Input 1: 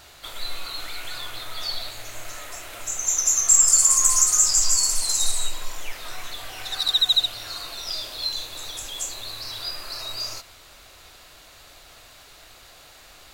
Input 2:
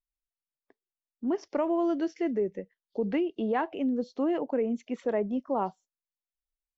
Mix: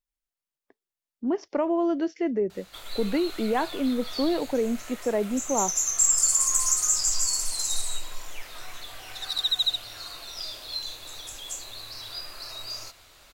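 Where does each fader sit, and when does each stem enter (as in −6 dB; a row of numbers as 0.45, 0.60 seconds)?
−5.5, +2.5 decibels; 2.50, 0.00 seconds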